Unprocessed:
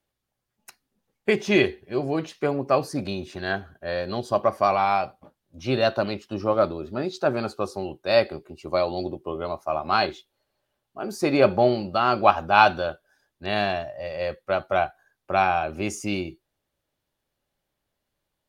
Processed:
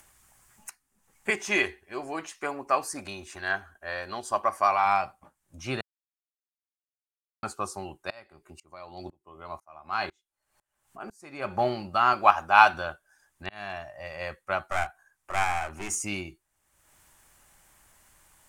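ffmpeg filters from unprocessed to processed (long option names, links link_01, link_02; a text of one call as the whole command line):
ffmpeg -i in.wav -filter_complex "[0:a]asettb=1/sr,asplit=3[link_01][link_02][link_03];[link_01]atrim=end=1.304[link_04];[link_02]atrim=start=1.3:end=4.86,asetpts=PTS-STARTPTS,afade=type=in:duration=0.004:curve=qsin,afade=type=out:start_time=3.556:duration=0.004:curve=qsin,equalizer=frequency=140:width=1.4:gain=-14[link_05];[link_03]atrim=start=4.856[link_06];[link_04][link_05]acrossfade=duration=0.004:curve1=hsin:curve2=qsin[link_07];[link_07][link_06]acrossfade=duration=0.004:curve1=qsin:curve2=hsin,asettb=1/sr,asplit=3[link_08][link_09][link_10];[link_08]atrim=end=8.104[link_11];[link_09]atrim=start=8.1:end=11.6,asetpts=PTS-STARTPTS,afade=type=in:duration=0.004:curve=qsin,afade=type=out:start_time=3.496:duration=0.004:curve=qsin,aeval=exprs='val(0)*pow(10,-28*if(lt(mod(-2*n/s,1),2*abs(-2)/1000),1-mod(-2*n/s,1)/(2*abs(-2)/1000),(mod(-2*n/s,1)-2*abs(-2)/1000)/(1-2*abs(-2)/1000))/20)':channel_layout=same[link_12];[link_10]atrim=start=11.596[link_13];[link_11][link_12]acrossfade=duration=0.004:curve1=hsin:curve2=qsin[link_14];[link_14][link_13]acrossfade=duration=0.004:curve1=qsin:curve2=hsin,asettb=1/sr,asplit=3[link_15][link_16][link_17];[link_15]atrim=end=12.134[link_18];[link_16]atrim=start=12.13:end=12.74,asetpts=PTS-STARTPTS,afade=type=in:duration=0.004:curve=qsin,afade=type=out:start_time=0.606:duration=0.004:curve=qsin,bass=frequency=250:gain=-6,treble=frequency=4000:gain=1[link_19];[link_17]atrim=start=12.736[link_20];[link_18][link_19]acrossfade=duration=0.004:curve1=hsin:curve2=qsin[link_21];[link_21][link_20]acrossfade=duration=0.004:curve1=qsin:curve2=hsin,asettb=1/sr,asplit=3[link_22][link_23][link_24];[link_22]atrim=end=14.624[link_25];[link_23]atrim=start=14.62:end=15.96,asetpts=PTS-STARTPTS,afade=type=in:duration=0.004:curve=qsin,afade=type=out:start_time=1.336:duration=0.004:curve=qsin,aeval=exprs='clip(val(0),-1,0.0266)':channel_layout=same[link_26];[link_24]atrim=start=15.956[link_27];[link_25][link_26]acrossfade=duration=0.004:curve1=hsin:curve2=qsin[link_28];[link_28][link_27]acrossfade=duration=0.004:curve1=qsin:curve2=hsin,asplit=4[link_29][link_30][link_31][link_32];[link_29]atrim=end=5.81,asetpts=PTS-STARTPTS,afade=type=out:start_time=5.806:duration=0.004:curve=hsin[link_33];[link_30]atrim=start=5.81:end=7.43,asetpts=PTS-STARTPTS,volume=0[link_34];[link_31]atrim=start=7.43:end=13.49,asetpts=PTS-STARTPTS,afade=type=in:duration=0.004:curve=hsin,afade=type=out:start_time=6.056:duration=0.004:curve=hsin[link_35];[link_32]atrim=start=13.49,asetpts=PTS-STARTPTS,afade=type=in:duration=0.48[link_36];[link_33][link_34][link_35][link_36]concat=n=4:v=0:a=1,equalizer=frequency=125:width_type=o:width=1:gain=-5,equalizer=frequency=250:width_type=o:width=1:gain=-5,equalizer=frequency=500:width_type=o:width=1:gain=-10,equalizer=frequency=1000:width_type=o:width=1:gain=4,equalizer=frequency=2000:width_type=o:width=1:gain=3,equalizer=frequency=4000:width_type=o:width=1:gain=-9,equalizer=frequency=8000:width_type=o:width=1:gain=12,acompressor=mode=upward:threshold=-41dB:ratio=2.5,volume=-1dB" out.wav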